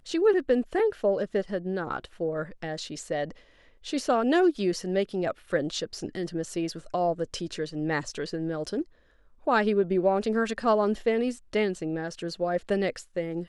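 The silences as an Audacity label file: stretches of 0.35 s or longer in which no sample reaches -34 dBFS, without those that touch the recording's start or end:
3.310000	3.860000	silence
8.820000	9.470000	silence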